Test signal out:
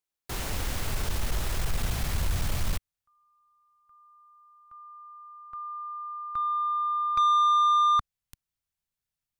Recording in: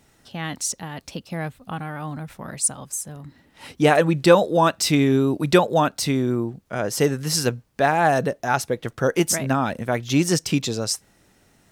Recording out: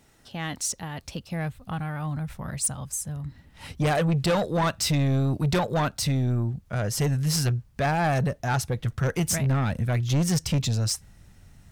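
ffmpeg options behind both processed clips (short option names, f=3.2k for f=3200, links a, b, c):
-af "asubboost=boost=8.5:cutoff=120,asoftclip=type=tanh:threshold=-17.5dB,volume=-1.5dB"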